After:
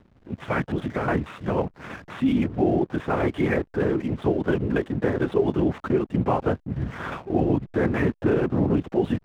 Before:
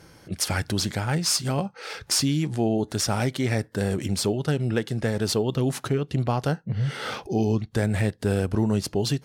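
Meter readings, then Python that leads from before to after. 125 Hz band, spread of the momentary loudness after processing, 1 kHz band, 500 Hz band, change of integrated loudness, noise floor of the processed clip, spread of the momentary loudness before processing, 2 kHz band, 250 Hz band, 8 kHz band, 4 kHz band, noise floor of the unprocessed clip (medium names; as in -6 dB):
-3.0 dB, 7 LU, +3.0 dB, +3.5 dB, +0.5 dB, -59 dBFS, 5 LU, +1.0 dB, +3.0 dB, under -25 dB, -15.5 dB, -55 dBFS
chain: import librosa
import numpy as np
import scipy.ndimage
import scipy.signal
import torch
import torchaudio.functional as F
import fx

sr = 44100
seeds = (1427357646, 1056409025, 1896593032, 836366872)

y = fx.lpc_vocoder(x, sr, seeds[0], excitation='whisper', order=8)
y = fx.bandpass_edges(y, sr, low_hz=110.0, high_hz=2000.0)
y = fx.backlash(y, sr, play_db=-44.5)
y = y * librosa.db_to_amplitude(3.5)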